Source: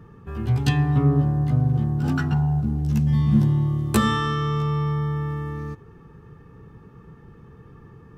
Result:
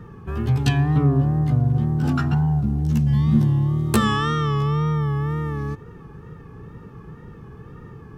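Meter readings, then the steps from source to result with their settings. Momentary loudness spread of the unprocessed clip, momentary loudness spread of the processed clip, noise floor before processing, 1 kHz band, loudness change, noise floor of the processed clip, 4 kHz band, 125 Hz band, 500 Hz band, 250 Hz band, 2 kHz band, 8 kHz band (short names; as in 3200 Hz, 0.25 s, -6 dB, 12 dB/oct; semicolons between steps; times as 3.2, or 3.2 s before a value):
11 LU, 9 LU, -48 dBFS, +2.0 dB, +1.5 dB, -42 dBFS, +1.5 dB, +1.5 dB, +2.0 dB, +1.5 dB, +1.5 dB, +1.5 dB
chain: in parallel at +2.5 dB: compressor, threshold -29 dBFS, peak gain reduction 15.5 dB; on the sum: wow and flutter 77 cents; gain -1.5 dB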